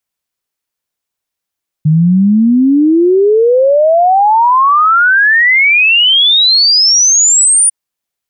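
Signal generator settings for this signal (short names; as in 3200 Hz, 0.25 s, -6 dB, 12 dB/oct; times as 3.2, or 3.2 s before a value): log sweep 150 Hz -> 9600 Hz 5.85 s -5 dBFS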